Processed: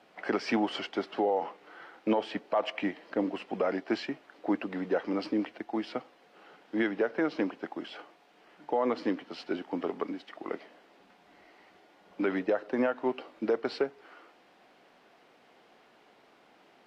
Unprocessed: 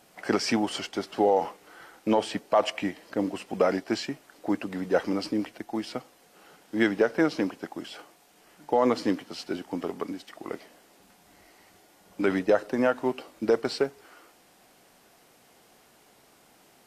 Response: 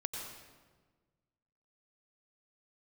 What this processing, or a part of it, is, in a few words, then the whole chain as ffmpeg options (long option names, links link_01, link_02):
DJ mixer with the lows and highs turned down: -filter_complex "[0:a]acrossover=split=200 4100:gain=0.251 1 0.0708[link_01][link_02][link_03];[link_01][link_02][link_03]amix=inputs=3:normalize=0,alimiter=limit=-18dB:level=0:latency=1:release=256"